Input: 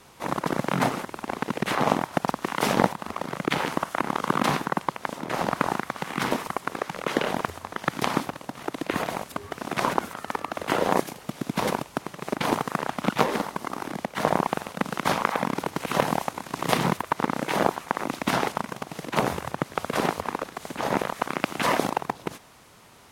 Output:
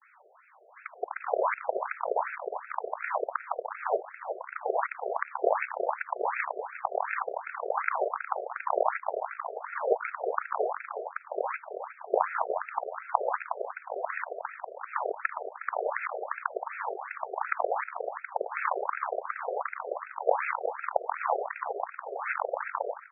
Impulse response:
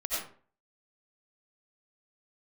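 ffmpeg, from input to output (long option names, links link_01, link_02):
-filter_complex "[0:a]areverse,lowshelf=frequency=210:gain=11,asplit=2[link_01][link_02];[link_02]adelay=362,lowpass=frequency=970:poles=1,volume=-6.5dB,asplit=2[link_03][link_04];[link_04]adelay=362,lowpass=frequency=970:poles=1,volume=0.33,asplit=2[link_05][link_06];[link_06]adelay=362,lowpass=frequency=970:poles=1,volume=0.33,asplit=2[link_07][link_08];[link_08]adelay=362,lowpass=frequency=970:poles=1,volume=0.33[link_09];[link_03][link_05][link_07][link_09]amix=inputs=4:normalize=0[link_10];[link_01][link_10]amix=inputs=2:normalize=0,afftfilt=real='re*between(b*sr/1024,510*pow(1900/510,0.5+0.5*sin(2*PI*2.7*pts/sr))/1.41,510*pow(1900/510,0.5+0.5*sin(2*PI*2.7*pts/sr))*1.41)':imag='im*between(b*sr/1024,510*pow(1900/510,0.5+0.5*sin(2*PI*2.7*pts/sr))/1.41,510*pow(1900/510,0.5+0.5*sin(2*PI*2.7*pts/sr))*1.41)':win_size=1024:overlap=0.75"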